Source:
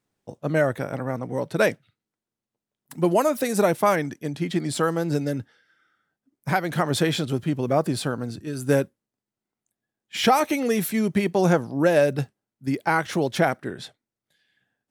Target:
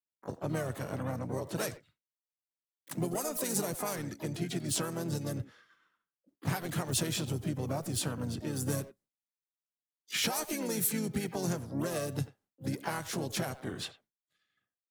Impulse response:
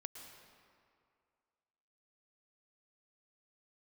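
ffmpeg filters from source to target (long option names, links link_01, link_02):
-filter_complex "[0:a]asplit=2[link_01][link_02];[link_02]adelay=90,highpass=300,lowpass=3400,asoftclip=type=hard:threshold=-17.5dB,volume=-17dB[link_03];[link_01][link_03]amix=inputs=2:normalize=0,acrossover=split=100|5300[link_04][link_05][link_06];[link_05]acompressor=threshold=-34dB:ratio=12[link_07];[link_04][link_07][link_06]amix=inputs=3:normalize=0,agate=range=-33dB:threshold=-59dB:ratio=3:detection=peak,asplit=4[link_08][link_09][link_10][link_11];[link_09]asetrate=33038,aresample=44100,atempo=1.33484,volume=-7dB[link_12];[link_10]asetrate=52444,aresample=44100,atempo=0.840896,volume=-10dB[link_13];[link_11]asetrate=88200,aresample=44100,atempo=0.5,volume=-13dB[link_14];[link_08][link_12][link_13][link_14]amix=inputs=4:normalize=0"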